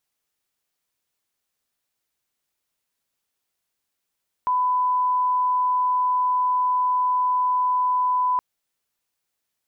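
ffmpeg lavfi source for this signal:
ffmpeg -f lavfi -i "sine=frequency=1000:duration=3.92:sample_rate=44100,volume=0.06dB" out.wav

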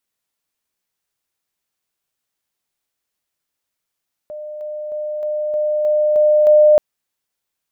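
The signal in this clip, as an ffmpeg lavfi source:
ffmpeg -f lavfi -i "aevalsrc='pow(10,(-27.5+3*floor(t/0.31))/20)*sin(2*PI*604*t)':duration=2.48:sample_rate=44100" out.wav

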